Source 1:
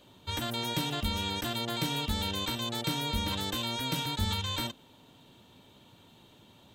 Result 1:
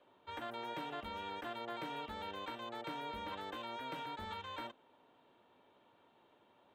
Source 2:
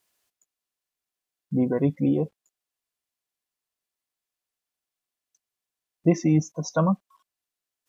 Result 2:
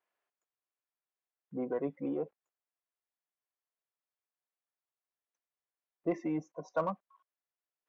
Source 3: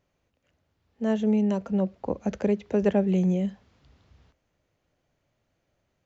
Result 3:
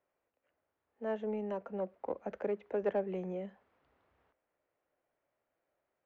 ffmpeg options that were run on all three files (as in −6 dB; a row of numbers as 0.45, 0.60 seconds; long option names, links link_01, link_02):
-filter_complex "[0:a]acrossover=split=340 2300:gain=0.112 1 0.0708[link_01][link_02][link_03];[link_01][link_02][link_03]amix=inputs=3:normalize=0,asplit=2[link_04][link_05];[link_05]asoftclip=type=tanh:threshold=-27.5dB,volume=-8dB[link_06];[link_04][link_06]amix=inputs=2:normalize=0,volume=-7.5dB"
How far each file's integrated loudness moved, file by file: −12.5, −12.5, −12.0 LU